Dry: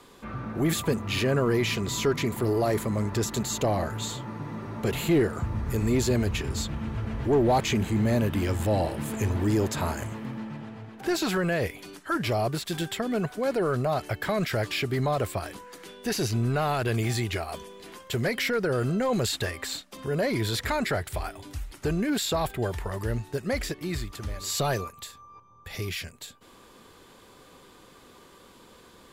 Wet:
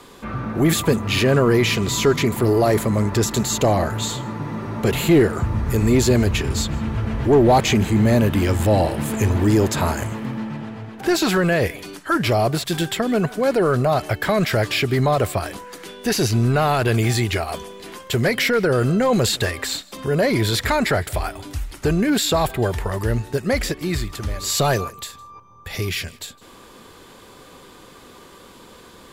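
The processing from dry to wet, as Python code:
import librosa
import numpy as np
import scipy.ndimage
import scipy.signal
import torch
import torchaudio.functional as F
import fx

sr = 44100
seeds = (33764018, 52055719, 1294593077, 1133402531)

y = x + 10.0 ** (-23.5 / 20.0) * np.pad(x, (int(159 * sr / 1000.0), 0))[:len(x)]
y = y * librosa.db_to_amplitude(8.0)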